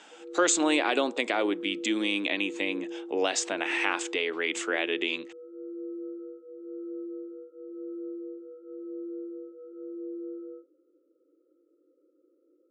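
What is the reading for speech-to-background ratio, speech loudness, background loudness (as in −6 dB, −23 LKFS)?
12.5 dB, −28.0 LKFS, −40.5 LKFS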